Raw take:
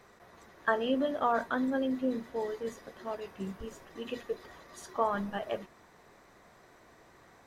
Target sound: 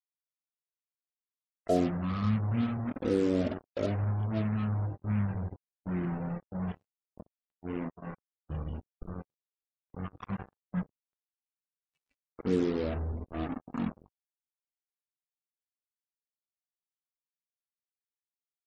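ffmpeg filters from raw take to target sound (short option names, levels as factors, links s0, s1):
-af "asetrate=17640,aresample=44100,acrusher=bits=5:mix=0:aa=0.5,afftdn=nr=29:nf=-51"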